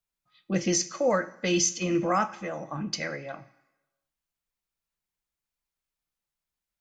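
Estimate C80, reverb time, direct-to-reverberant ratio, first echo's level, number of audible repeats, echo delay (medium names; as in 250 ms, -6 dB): 19.0 dB, 1.1 s, 9.5 dB, no echo, no echo, no echo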